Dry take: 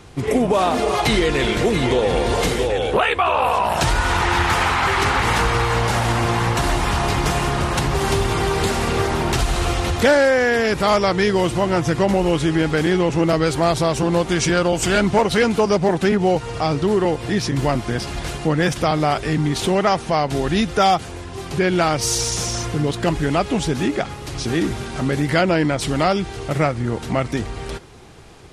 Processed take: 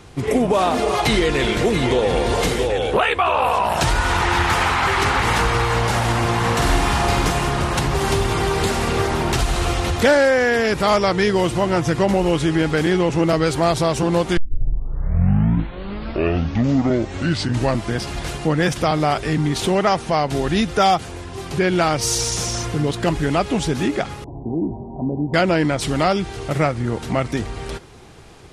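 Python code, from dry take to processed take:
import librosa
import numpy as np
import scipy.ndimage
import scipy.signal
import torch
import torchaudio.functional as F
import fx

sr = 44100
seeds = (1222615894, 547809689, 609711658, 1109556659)

y = fx.room_flutter(x, sr, wall_m=8.1, rt60_s=0.58, at=(6.43, 7.29), fade=0.02)
y = fx.cheby_ripple(y, sr, hz=1000.0, ripple_db=6, at=(24.24, 25.34))
y = fx.edit(y, sr, fx.tape_start(start_s=14.37, length_s=3.57), tone=tone)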